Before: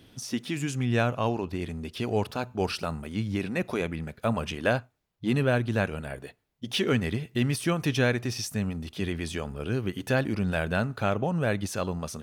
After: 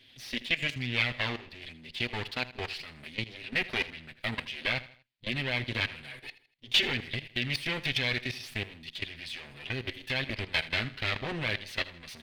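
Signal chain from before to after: minimum comb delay 7.9 ms; level quantiser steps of 16 dB; band shelf 2900 Hz +15.5 dB; on a send: feedback echo 80 ms, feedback 40%, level -17 dB; on the sum: gain -3 dB

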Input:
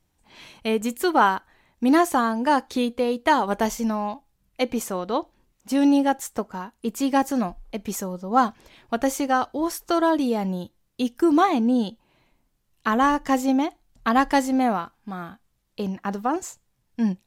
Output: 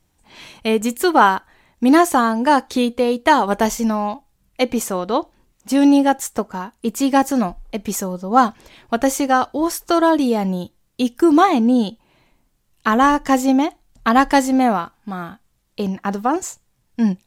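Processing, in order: bell 8000 Hz +2 dB; gain +5.5 dB

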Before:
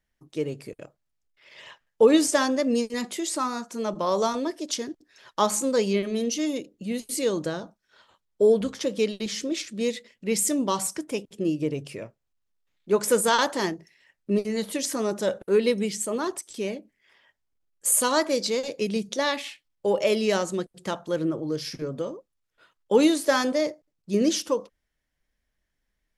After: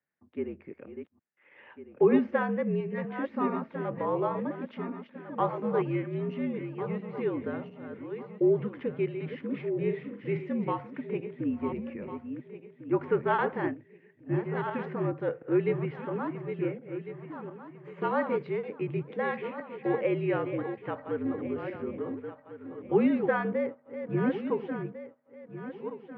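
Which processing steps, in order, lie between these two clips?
regenerating reverse delay 0.7 s, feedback 54%, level -8 dB; 9.72–10.47 doubler 42 ms -7 dB; mistuned SSB -57 Hz 190–2400 Hz; gain -5 dB

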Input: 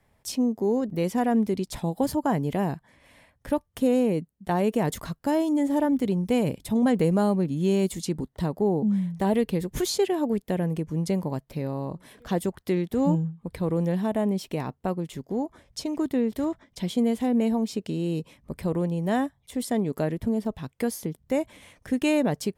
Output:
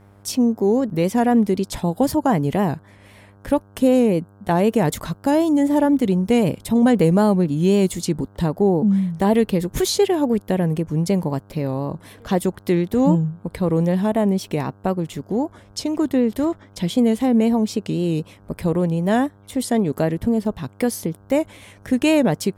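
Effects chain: vibrato 3.9 Hz 62 cents; buzz 100 Hz, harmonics 16, -56 dBFS -6 dB/oct; gain +6.5 dB

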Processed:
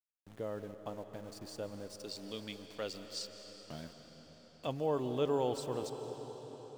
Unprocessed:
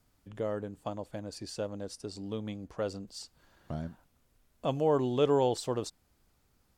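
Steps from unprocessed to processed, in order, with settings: 1.95–4.67 weighting filter D; sample gate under -47.5 dBFS; reverb RT60 5.6 s, pre-delay 0.115 s, DRR 7.5 dB; gain -6.5 dB

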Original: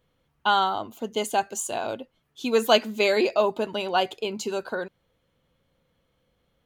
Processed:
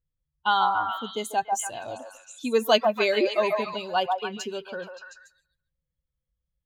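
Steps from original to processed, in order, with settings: per-bin expansion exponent 1.5; delay with a stepping band-pass 0.143 s, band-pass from 850 Hz, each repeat 0.7 oct, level -1 dB

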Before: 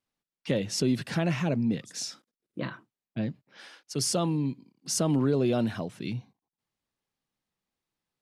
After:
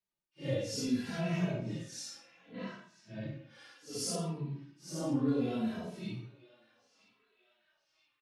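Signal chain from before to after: phase scrambler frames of 0.2 s; 4.15–5.28 high shelf 3000 Hz -10 dB; narrowing echo 0.976 s, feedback 69%, band-pass 2500 Hz, level -18 dB; reverb RT60 0.65 s, pre-delay 63 ms, DRR 10.5 dB; endless flanger 2.7 ms -0.66 Hz; gain -4.5 dB

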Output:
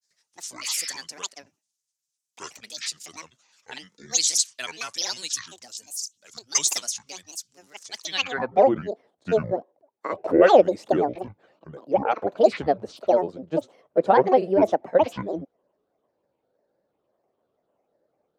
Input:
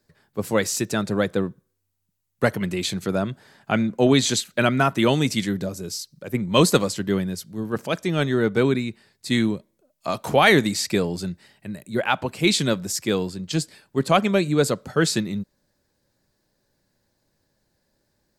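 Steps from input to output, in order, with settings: spectral repair 0.66–0.94, 820–4100 Hz both; grains, spray 27 ms, pitch spread up and down by 12 st; band-pass sweep 6400 Hz -> 570 Hz, 8.02–8.57; gain +8.5 dB

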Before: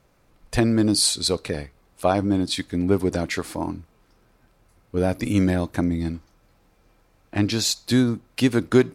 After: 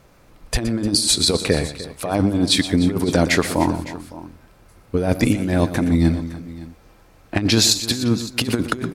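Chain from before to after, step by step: negative-ratio compressor -23 dBFS, ratio -0.5; tapped delay 0.12/0.302/0.56 s -12.5/-16.5/-18 dB; gain +6 dB

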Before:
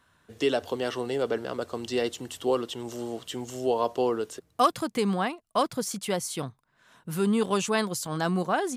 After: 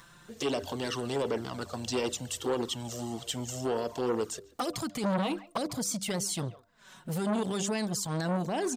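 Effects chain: tone controls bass +4 dB, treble +8 dB; de-hum 99.37 Hz, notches 7; limiter -20 dBFS, peak gain reduction 11 dB; 5.03–5.58 comb 6.3 ms, depth 95%; speakerphone echo 0.14 s, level -18 dB; upward compressor, threshold -45 dBFS; bell 11000 Hz -14 dB 0.25 oct; envelope flanger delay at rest 6.5 ms, full sweep at -24 dBFS; core saturation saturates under 870 Hz; gain +2.5 dB

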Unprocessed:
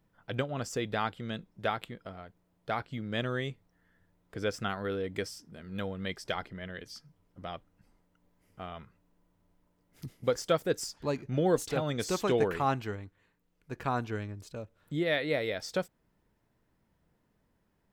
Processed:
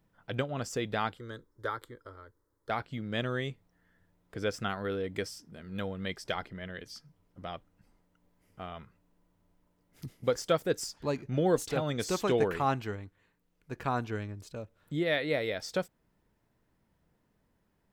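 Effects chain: 1.17–2.7 fixed phaser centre 710 Hz, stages 6

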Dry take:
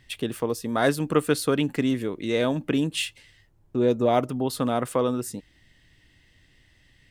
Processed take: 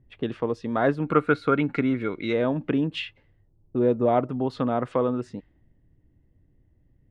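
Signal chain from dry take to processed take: treble ducked by the level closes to 1700 Hz, closed at -21 dBFS; 1.02–2.33 small resonant body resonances 1400/2200/3900 Hz, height 16 dB, ringing for 30 ms; low-pass opened by the level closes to 430 Hz, open at -22 dBFS

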